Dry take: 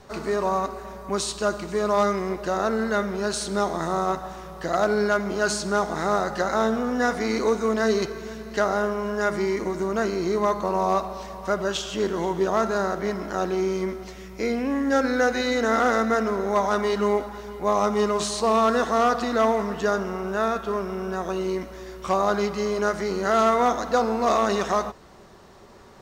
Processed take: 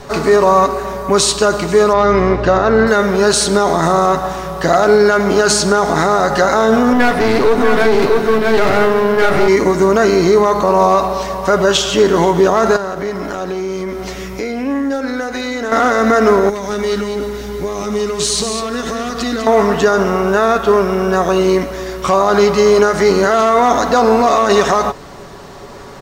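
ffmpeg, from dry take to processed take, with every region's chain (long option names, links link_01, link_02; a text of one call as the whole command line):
ffmpeg -i in.wav -filter_complex "[0:a]asettb=1/sr,asplit=3[link_01][link_02][link_03];[link_01]atrim=end=1.934[link_04];[link_02]atrim=start=1.93:end=2.87,asetpts=PTS-STARTPTS,afade=type=in:duration=0.004:curve=qsin,afade=type=out:start_time=0.936:duration=0.004:curve=qsin,lowpass=4000,aeval=exprs='val(0)+0.0158*(sin(2*PI*60*n/s)+sin(2*PI*2*60*n/s)/2+sin(2*PI*3*60*n/s)/3+sin(2*PI*4*60*n/s)/4+sin(2*PI*5*60*n/s)/5)':channel_layout=same[link_05];[link_03]atrim=start=2.866[link_06];[link_04][link_05]acrossfade=duration=0.004:curve1=hsin:curve2=qsin[link_07];[link_07][link_06]acrossfade=duration=0.004:curve1=qsin:curve2=hsin,asettb=1/sr,asplit=3[link_08][link_09][link_10];[link_08]atrim=end=6.934[link_11];[link_09]atrim=start=6.93:end=9.48,asetpts=PTS-STARTPTS,afade=type=in:duration=0.004:curve=qsin,afade=type=out:start_time=2.546:duration=0.004:curve=qsin,equalizer=frequency=6700:width_type=o:width=0.6:gain=-13,aeval=exprs='clip(val(0),-1,0.0316)':channel_layout=same,aecho=1:1:647:0.668,atrim=end_sample=112455[link_12];[link_10]atrim=start=9.476[link_13];[link_11][link_12]acrossfade=duration=0.004:curve1=hsin:curve2=qsin[link_14];[link_14][link_13]acrossfade=duration=0.004:curve1=qsin:curve2=hsin,asettb=1/sr,asplit=3[link_15][link_16][link_17];[link_15]atrim=end=12.764[link_18];[link_16]atrim=start=12.76:end=15.72,asetpts=PTS-STARTPTS,afade=type=in:duration=0.004:curve=qsin,afade=type=out:start_time=2.956:duration=0.004:curve=qsin,acompressor=threshold=-34dB:ratio=4:attack=3.2:release=140:knee=1:detection=peak,asoftclip=type=hard:threshold=-27.5dB[link_19];[link_17]atrim=start=15.716[link_20];[link_18][link_19]acrossfade=duration=0.004:curve1=hsin:curve2=qsin[link_21];[link_21][link_20]acrossfade=duration=0.004:curve1=qsin:curve2=hsin,asettb=1/sr,asplit=3[link_22][link_23][link_24];[link_22]atrim=end=16.494[link_25];[link_23]atrim=start=16.49:end=19.47,asetpts=PTS-STARTPTS,afade=type=in:duration=0.004:curve=qsin,afade=type=out:start_time=2.976:duration=0.004:curve=qsin,acompressor=threshold=-25dB:ratio=6:attack=3.2:release=140:knee=1:detection=peak,equalizer=frequency=860:width_type=o:width=1.7:gain=-13.5,aecho=1:1:199:0.447,atrim=end_sample=131418[link_26];[link_24]atrim=start=19.466[link_27];[link_25][link_26]acrossfade=duration=0.004:curve1=hsin:curve2=qsin[link_28];[link_28][link_27]acrossfade=duration=0.004:curve1=qsin:curve2=hsin,aecho=1:1:7.1:0.33,alimiter=level_in=16dB:limit=-1dB:release=50:level=0:latency=1,volume=-1dB" out.wav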